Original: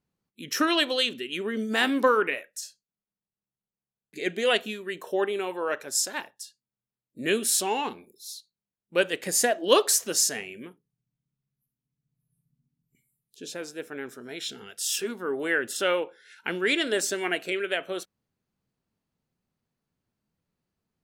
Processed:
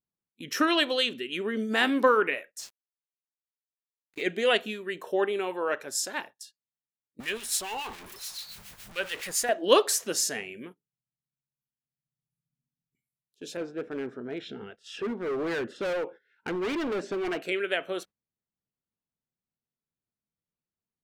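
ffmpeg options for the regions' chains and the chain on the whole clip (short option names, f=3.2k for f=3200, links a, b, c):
-filter_complex "[0:a]asettb=1/sr,asplit=3[a][b][c];[a]atrim=end=2.594[d];[b]atrim=start=2.59:end=4.23,asetpts=PTS-STARTPTS,afade=t=in:d=0.004:c=qsin,afade=t=out:st=1.636:d=0.004:c=qsin,equalizer=f=2.8k:w=1.2:g=6,aeval=exprs='val(0)*gte(abs(val(0)),0.0075)':c=same[e];[c]atrim=start=4.226[f];[d][e]acrossfade=d=0.004:c1=hsin:c2=qsin[g];[g][f]acrossfade=d=0.004:c1=qsin:c2=hsin,asettb=1/sr,asplit=3[h][i][j];[h]atrim=end=7.204[k];[i]atrim=start=7.2:end=9.49,asetpts=PTS-STARTPTS,afade=t=in:d=0.004:c=qsin,afade=t=out:st=2.286:d=0.004:c=qsin,aeval=exprs='val(0)+0.5*0.0355*sgn(val(0))':c=same,equalizer=f=280:t=o:w=2.6:g=-14,acrossover=split=1500[l][m];[l]aeval=exprs='val(0)*(1-0.7/2+0.7/2*cos(2*PI*7.1*n/s))':c=same[n];[m]aeval=exprs='val(0)*(1-0.7/2-0.7/2*cos(2*PI*7.1*n/s))':c=same[o];[n][o]amix=inputs=2:normalize=0[p];[j]atrim=start=9.486[q];[k][p]acrossfade=d=0.004:c1=hsin:c2=qsin[r];[r][q]acrossfade=d=0.004:c1=qsin:c2=hsin,asettb=1/sr,asplit=3[s][t][u];[s]atrim=end=13.574[v];[t]atrim=start=13.57:end=17.42,asetpts=PTS-STARTPTS,afade=t=in:d=0.004:c=qsin,afade=t=out:st=3.846:d=0.004:c=qsin,lowpass=3.4k,tiltshelf=f=1.3k:g=6,asoftclip=type=hard:threshold=-27.5dB[w];[u]atrim=start=17.416[x];[v][w]acrossfade=d=0.004:c1=hsin:c2=qsin[y];[y][x]acrossfade=d=0.004:c1=qsin:c2=hsin,agate=range=-14dB:threshold=-45dB:ratio=16:detection=peak,bass=f=250:g=-1,treble=f=4k:g=-5"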